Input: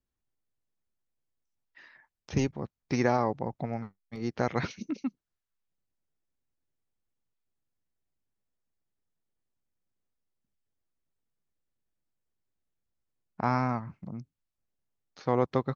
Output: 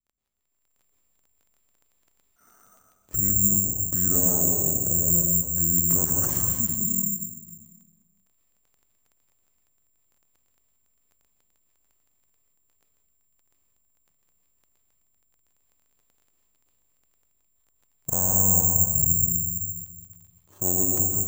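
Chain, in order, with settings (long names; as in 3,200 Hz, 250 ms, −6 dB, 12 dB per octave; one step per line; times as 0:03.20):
one scale factor per block 7 bits
low-pass filter 2,700 Hz 6 dB per octave
spectral tilt −2 dB per octave
noise gate −46 dBFS, range −11 dB
downward compressor 16 to 1, threshold −37 dBFS, peak gain reduction 21 dB
transient designer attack −8 dB, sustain +6 dB
automatic gain control gain up to 13.5 dB
surface crackle 36 per second −48 dBFS
on a send at −2 dB: convolution reverb RT60 1.1 s, pre-delay 83 ms
on the sum: wrong playback speed 45 rpm record played at 33 rpm
bad sample-rate conversion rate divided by 6×, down none, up zero stuff
one half of a high-frequency compander decoder only
level −4 dB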